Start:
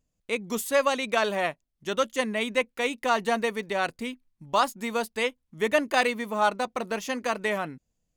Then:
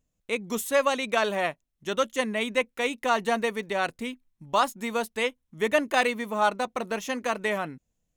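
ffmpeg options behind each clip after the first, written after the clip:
ffmpeg -i in.wav -af "bandreject=frequency=4700:width=10" out.wav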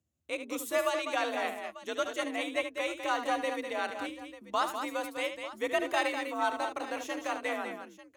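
ffmpeg -i in.wav -filter_complex "[0:a]afreqshift=59,asplit=2[link_01][link_02];[link_02]aecho=0:1:74|200|893:0.335|0.422|0.158[link_03];[link_01][link_03]amix=inputs=2:normalize=0,volume=-7dB" out.wav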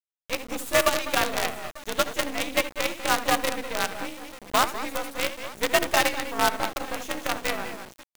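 ffmpeg -i in.wav -af "acrusher=bits=5:dc=4:mix=0:aa=0.000001,volume=7.5dB" out.wav

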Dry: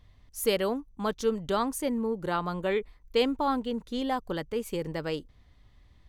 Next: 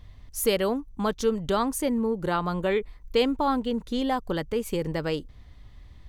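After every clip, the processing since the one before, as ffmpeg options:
ffmpeg -i in.wav -filter_complex "[0:a]lowshelf=frequency=130:gain=4.5,asplit=2[link_01][link_02];[link_02]acompressor=threshold=-35dB:ratio=6,volume=1dB[link_03];[link_01][link_03]amix=inputs=2:normalize=0" out.wav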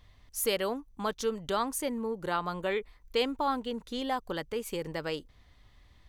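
ffmpeg -i in.wav -af "lowshelf=frequency=370:gain=-9.5,volume=-2.5dB" out.wav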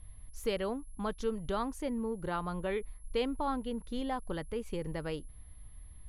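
ffmpeg -i in.wav -af "aeval=exprs='val(0)+0.00708*sin(2*PI*11000*n/s)':channel_layout=same,aemphasis=mode=reproduction:type=bsi,volume=-5dB" out.wav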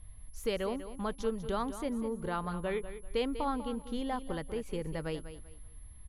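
ffmpeg -i in.wav -af "aecho=1:1:195|390|585:0.251|0.0678|0.0183" out.wav

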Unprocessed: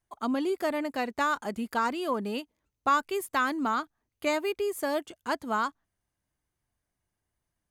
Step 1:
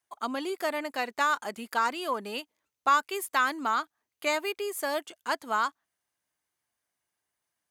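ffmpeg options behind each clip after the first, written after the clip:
ffmpeg -i in.wav -af "highpass=frequency=870:poles=1,volume=3.5dB" out.wav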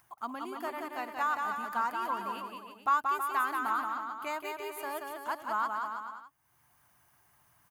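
ffmpeg -i in.wav -filter_complex "[0:a]equalizer=frequency=125:width_type=o:width=1:gain=7,equalizer=frequency=250:width_type=o:width=1:gain=-4,equalizer=frequency=500:width_type=o:width=1:gain=-10,equalizer=frequency=1000:width_type=o:width=1:gain=4,equalizer=frequency=2000:width_type=o:width=1:gain=-5,equalizer=frequency=4000:width_type=o:width=1:gain=-10,equalizer=frequency=8000:width_type=o:width=1:gain=-9,acompressor=mode=upward:threshold=-45dB:ratio=2.5,asplit=2[link_01][link_02];[link_02]aecho=0:1:180|324|439.2|531.4|605.1:0.631|0.398|0.251|0.158|0.1[link_03];[link_01][link_03]amix=inputs=2:normalize=0,volume=-3.5dB" out.wav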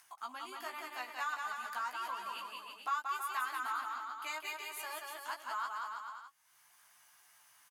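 ffmpeg -i in.wav -filter_complex "[0:a]acompressor=threshold=-48dB:ratio=1.5,bandpass=frequency=5100:width_type=q:width=0.58:csg=0,asplit=2[link_01][link_02];[link_02]adelay=16,volume=-3.5dB[link_03];[link_01][link_03]amix=inputs=2:normalize=0,volume=7.5dB" out.wav

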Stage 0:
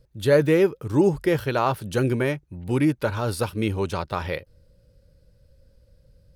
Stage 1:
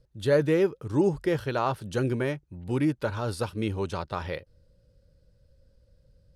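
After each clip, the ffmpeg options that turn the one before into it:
ffmpeg -i in.wav -af "lowpass=9400,equalizer=frequency=2300:width=3.7:gain=-3,volume=-4.5dB" out.wav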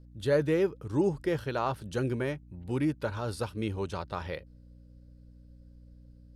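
ffmpeg -i in.wav -af "aeval=exprs='val(0)+0.00398*(sin(2*PI*60*n/s)+sin(2*PI*2*60*n/s)/2+sin(2*PI*3*60*n/s)/3+sin(2*PI*4*60*n/s)/4+sin(2*PI*5*60*n/s)/5)':channel_layout=same,volume=-3.5dB" out.wav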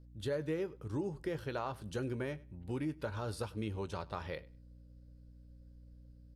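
ffmpeg -i in.wav -filter_complex "[0:a]acompressor=threshold=-29dB:ratio=6,asplit=2[link_01][link_02];[link_02]adelay=19,volume=-14dB[link_03];[link_01][link_03]amix=inputs=2:normalize=0,aecho=1:1:100|200:0.075|0.0135,volume=-4.5dB" out.wav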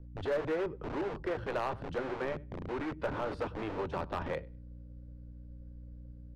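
ffmpeg -i in.wav -filter_complex "[0:a]acrossover=split=350|860[link_01][link_02][link_03];[link_01]aeval=exprs='(mod(126*val(0)+1,2)-1)/126':channel_layout=same[link_04];[link_04][link_02][link_03]amix=inputs=3:normalize=0,adynamicsmooth=sensitivity=1.5:basefreq=1900,volume=35dB,asoftclip=hard,volume=-35dB,volume=8dB" out.wav

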